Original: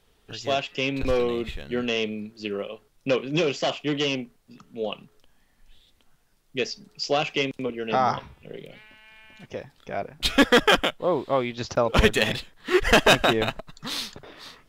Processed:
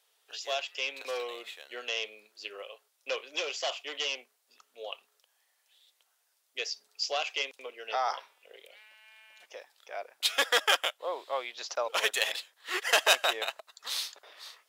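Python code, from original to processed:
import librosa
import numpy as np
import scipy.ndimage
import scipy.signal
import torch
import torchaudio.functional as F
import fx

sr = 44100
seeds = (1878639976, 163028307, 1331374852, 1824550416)

y = scipy.signal.sosfilt(scipy.signal.butter(4, 530.0, 'highpass', fs=sr, output='sos'), x)
y = fx.high_shelf(y, sr, hz=3600.0, db=9.5)
y = y * librosa.db_to_amplitude(-8.0)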